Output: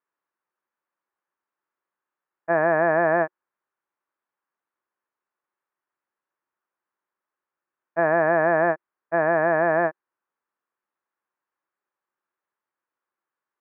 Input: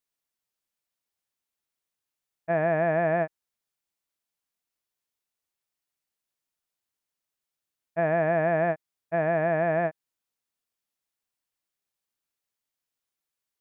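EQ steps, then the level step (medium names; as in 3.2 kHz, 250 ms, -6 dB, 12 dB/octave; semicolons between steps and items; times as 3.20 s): cabinet simulation 170–2400 Hz, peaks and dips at 360 Hz +9 dB, 550 Hz +6 dB, 1.1 kHz +3 dB; high-order bell 1.2 kHz +8.5 dB 1.3 oct; 0.0 dB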